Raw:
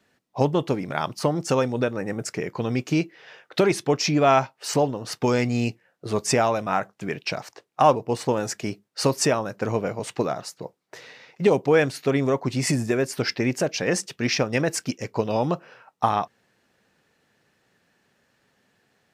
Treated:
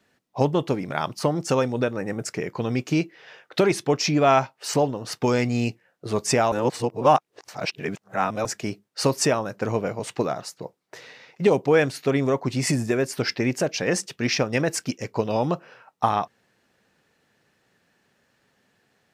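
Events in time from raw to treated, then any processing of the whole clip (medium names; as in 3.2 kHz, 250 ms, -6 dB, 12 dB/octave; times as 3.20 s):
6.52–8.45 s: reverse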